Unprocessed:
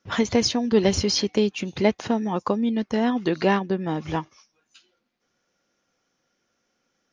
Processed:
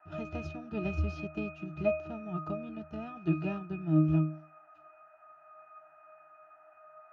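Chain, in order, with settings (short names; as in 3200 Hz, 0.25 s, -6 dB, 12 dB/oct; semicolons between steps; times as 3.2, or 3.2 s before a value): spectral whitening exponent 0.6; band noise 640–1900 Hz -44 dBFS; octave resonator D#, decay 0.43 s; gain +8.5 dB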